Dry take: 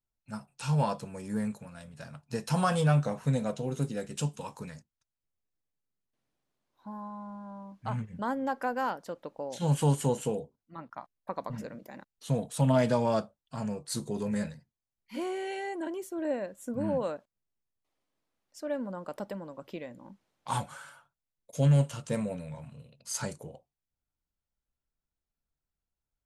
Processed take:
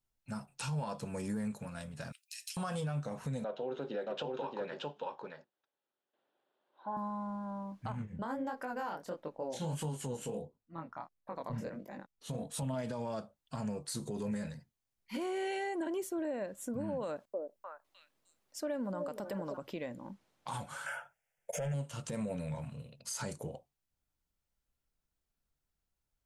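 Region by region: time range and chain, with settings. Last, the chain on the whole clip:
0:02.12–0:02.57: downward compressor 2.5 to 1, threshold −33 dBFS + Butterworth high-pass 2,300 Hz + high-shelf EQ 11,000 Hz +11 dB
0:03.44–0:06.97: loudspeaker in its box 360–3,600 Hz, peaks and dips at 370 Hz +7 dB, 570 Hz +7 dB, 840 Hz +6 dB, 1,500 Hz +5 dB, 2,200 Hz −5 dB, 3,400 Hz +4 dB + single-tap delay 624 ms −5.5 dB
0:07.92–0:12.63: chorus effect 1.5 Hz, delay 19 ms, depth 7.4 ms + one half of a high-frequency compander decoder only
0:17.03–0:19.57: high-shelf EQ 8,700 Hz +5 dB + echo through a band-pass that steps 305 ms, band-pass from 440 Hz, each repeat 1.4 octaves, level −4.5 dB
0:20.86–0:21.74: mid-hump overdrive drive 22 dB, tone 2,700 Hz, clips at −15.5 dBFS + phaser with its sweep stopped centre 1,100 Hz, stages 6
whole clip: downward compressor 6 to 1, threshold −35 dBFS; brickwall limiter −32 dBFS; level +3 dB

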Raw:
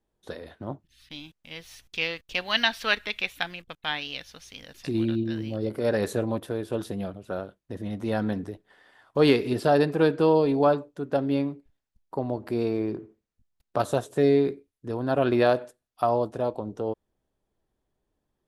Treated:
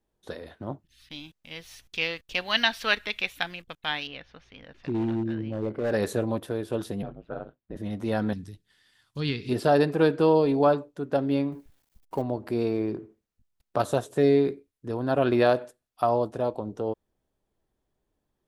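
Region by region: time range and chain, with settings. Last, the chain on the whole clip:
0:04.07–0:05.91: low-pass filter 2,100 Hz + gain into a clipping stage and back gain 23 dB
0:07.02–0:07.76: ring modulation 57 Hz + high-frequency loss of the air 340 metres
0:08.33–0:09.49: treble cut that deepens with the level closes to 2,900 Hz, closed at −15 dBFS + drawn EQ curve 140 Hz 0 dB, 630 Hz −22 dB, 4,500 Hz +4 dB
0:11.52–0:12.22: mu-law and A-law mismatch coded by mu + high-shelf EQ 10,000 Hz +5.5 dB
whole clip: no processing

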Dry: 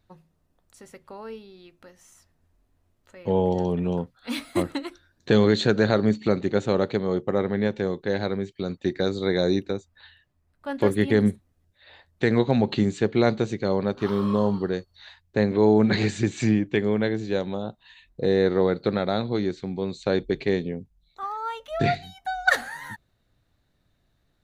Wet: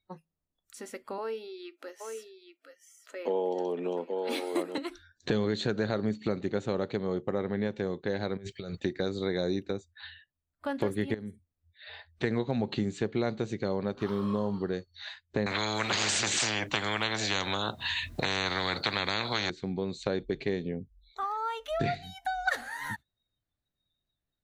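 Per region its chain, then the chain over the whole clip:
0:01.18–0:04.78: high-pass filter 310 Hz 24 dB per octave + low-shelf EQ 410 Hz +4 dB + single-tap delay 823 ms −8 dB
0:08.37–0:08.80: parametric band 270 Hz −11.5 dB 0.78 octaves + compressor whose output falls as the input rises −41 dBFS + one half of a high-frequency compander decoder only
0:11.14–0:12.24: notch filter 7,000 Hz, Q 9.3 + downward compressor 2 to 1, threshold −43 dBFS
0:15.46–0:19.50: high-pass filter 81 Hz 24 dB per octave + low-shelf EQ 170 Hz +12 dB + every bin compressed towards the loudest bin 10 to 1
whole clip: noise reduction from a noise print of the clip's start 24 dB; downward compressor 2.5 to 1, threshold −38 dBFS; level +5 dB

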